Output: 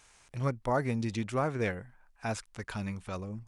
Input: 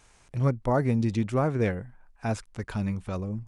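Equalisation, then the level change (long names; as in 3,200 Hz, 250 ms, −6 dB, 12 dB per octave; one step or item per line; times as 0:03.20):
tilt shelving filter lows −4.5 dB, about 690 Hz
−3.5 dB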